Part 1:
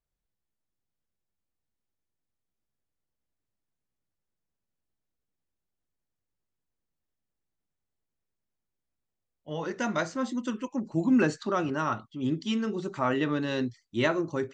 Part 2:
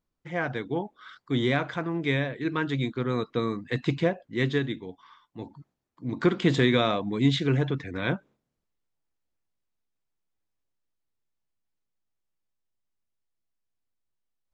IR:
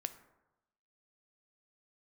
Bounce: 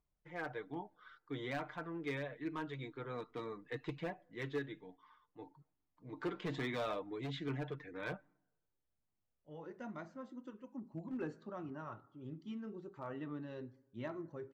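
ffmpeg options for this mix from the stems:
-filter_complex "[0:a]acompressor=mode=upward:threshold=-56dB:ratio=2.5,volume=-4dB,asplit=2[a][b];[b]volume=-13.5dB[c];[1:a]highpass=f=700:p=1,aecho=1:1:6.6:0.49,volume=-4dB,asplit=3[d][e][f];[e]volume=-15.5dB[g];[f]apad=whole_len=641031[h];[a][h]sidechaingate=range=-12dB:threshold=-52dB:ratio=16:detection=peak[i];[2:a]atrim=start_sample=2205[j];[c][g]amix=inputs=2:normalize=0[k];[k][j]afir=irnorm=-1:irlink=0[l];[i][d][l]amix=inputs=3:normalize=0,lowpass=f=1k:p=1,asoftclip=type=hard:threshold=-28.5dB,flanger=delay=0.9:depth=1.5:regen=-52:speed=1.2:shape=sinusoidal"

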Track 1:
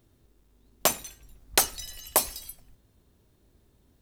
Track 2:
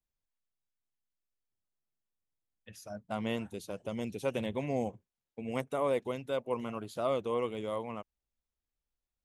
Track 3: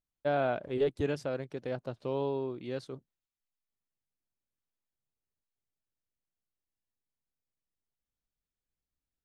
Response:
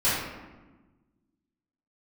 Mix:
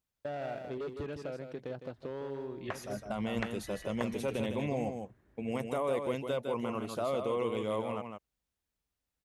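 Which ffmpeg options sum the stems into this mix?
-filter_complex "[0:a]lowpass=f=1.8k:t=q:w=3,adelay=1850,volume=-3dB[a];[1:a]alimiter=level_in=2.5dB:limit=-24dB:level=0:latency=1:release=12,volume=-2.5dB,volume=2.5dB,asplit=2[b][c];[c]volume=-6dB[d];[2:a]volume=27.5dB,asoftclip=hard,volume=-27.5dB,volume=0.5dB,asplit=2[e][f];[f]volume=-14dB[g];[a][e]amix=inputs=2:normalize=0,highshelf=f=7.8k:g=-10.5,acompressor=threshold=-37dB:ratio=6,volume=0dB[h];[d][g]amix=inputs=2:normalize=0,aecho=0:1:158:1[i];[b][h][i]amix=inputs=3:normalize=0,highpass=41"

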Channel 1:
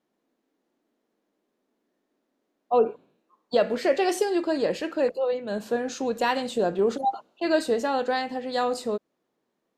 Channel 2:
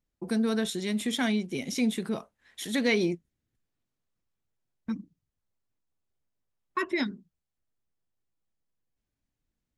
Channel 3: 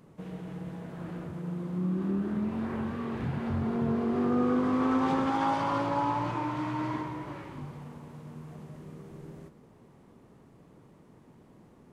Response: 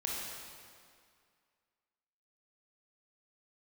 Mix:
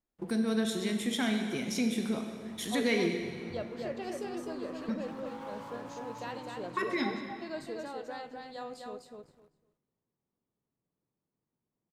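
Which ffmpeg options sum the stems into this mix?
-filter_complex "[0:a]volume=-17.5dB,asplit=3[a][b][c];[b]volume=-23.5dB[d];[c]volume=-3dB[e];[1:a]volume=-1dB,asplit=2[f][g];[g]volume=-8.5dB[h];[2:a]asoftclip=type=tanh:threshold=-26.5dB,volume=-11.5dB,asplit=2[i][j];[j]volume=-21dB[k];[f][i]amix=inputs=2:normalize=0,aeval=exprs='sgn(val(0))*max(abs(val(0))-0.00158,0)':c=same,acompressor=threshold=-40dB:ratio=2,volume=0dB[l];[3:a]atrim=start_sample=2205[m];[d][h]amix=inputs=2:normalize=0[n];[n][m]afir=irnorm=-1:irlink=0[o];[e][k]amix=inputs=2:normalize=0,aecho=0:1:253|506|759:1|0.17|0.0289[p];[a][l][o][p]amix=inputs=4:normalize=0"

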